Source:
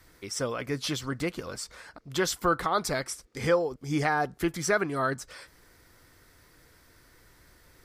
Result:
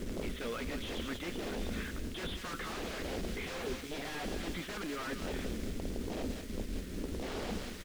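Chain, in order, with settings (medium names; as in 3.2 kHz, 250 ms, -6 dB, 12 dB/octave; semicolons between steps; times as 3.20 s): wind noise 200 Hz -27 dBFS; in parallel at -2 dB: level held to a coarse grid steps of 13 dB; on the sum: resampled via 8 kHz; short-mantissa float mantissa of 2-bit; integer overflow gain 23 dB; peaking EQ 310 Hz -5 dB 0.3 oct; static phaser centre 310 Hz, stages 4; feedback delay 189 ms, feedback 32%, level -15 dB; reverse; compression, threshold -36 dBFS, peak gain reduction 9.5 dB; reverse; treble shelf 2.2 kHz +11.5 dB; slew-rate limiter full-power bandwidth 18 Hz; trim +2.5 dB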